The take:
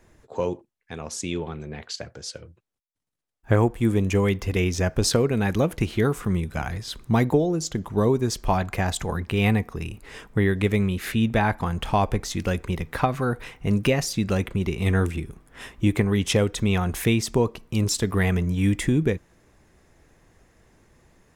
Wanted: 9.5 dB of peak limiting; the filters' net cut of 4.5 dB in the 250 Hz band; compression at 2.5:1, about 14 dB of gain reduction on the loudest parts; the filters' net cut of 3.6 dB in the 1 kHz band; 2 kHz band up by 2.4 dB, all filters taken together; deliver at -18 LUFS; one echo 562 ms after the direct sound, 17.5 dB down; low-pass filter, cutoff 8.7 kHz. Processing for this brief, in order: low-pass 8.7 kHz; peaking EQ 250 Hz -6 dB; peaking EQ 1 kHz -5.5 dB; peaking EQ 2 kHz +4.5 dB; compression 2.5:1, threshold -40 dBFS; peak limiter -30.5 dBFS; delay 562 ms -17.5 dB; trim +23 dB

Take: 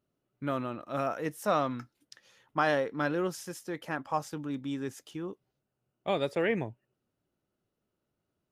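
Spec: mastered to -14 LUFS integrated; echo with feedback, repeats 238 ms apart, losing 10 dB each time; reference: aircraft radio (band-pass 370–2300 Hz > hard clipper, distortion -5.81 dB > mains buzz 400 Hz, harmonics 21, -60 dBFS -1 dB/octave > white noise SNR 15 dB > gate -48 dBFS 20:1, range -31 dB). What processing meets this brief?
band-pass 370–2300 Hz; feedback delay 238 ms, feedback 32%, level -10 dB; hard clipper -32 dBFS; mains buzz 400 Hz, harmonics 21, -60 dBFS -1 dB/octave; white noise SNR 15 dB; gate -48 dBFS 20:1, range -31 dB; trim +24.5 dB

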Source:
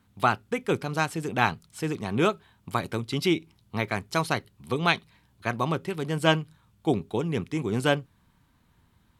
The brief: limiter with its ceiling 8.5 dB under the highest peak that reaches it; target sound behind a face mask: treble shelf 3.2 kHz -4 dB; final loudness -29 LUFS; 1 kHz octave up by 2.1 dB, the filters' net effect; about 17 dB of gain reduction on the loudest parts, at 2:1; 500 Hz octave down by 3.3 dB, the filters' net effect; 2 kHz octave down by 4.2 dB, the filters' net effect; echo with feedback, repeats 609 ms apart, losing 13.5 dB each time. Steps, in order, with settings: peaking EQ 500 Hz -6 dB; peaking EQ 1 kHz +7 dB; peaking EQ 2 kHz -7.5 dB; compression 2:1, threshold -49 dBFS; peak limiter -31 dBFS; treble shelf 3.2 kHz -4 dB; feedback delay 609 ms, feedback 21%, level -13.5 dB; trim +16.5 dB

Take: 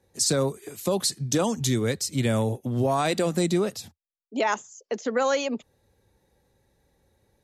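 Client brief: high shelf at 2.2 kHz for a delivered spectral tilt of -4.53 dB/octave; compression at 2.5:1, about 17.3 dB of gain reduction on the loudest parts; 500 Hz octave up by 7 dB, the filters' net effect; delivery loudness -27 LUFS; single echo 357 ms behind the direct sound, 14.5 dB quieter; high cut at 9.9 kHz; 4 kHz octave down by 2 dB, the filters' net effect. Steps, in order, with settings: low-pass 9.9 kHz; peaking EQ 500 Hz +8 dB; treble shelf 2.2 kHz +4.5 dB; peaking EQ 4 kHz -7 dB; compression 2.5:1, threshold -41 dBFS; delay 357 ms -14.5 dB; trim +10 dB

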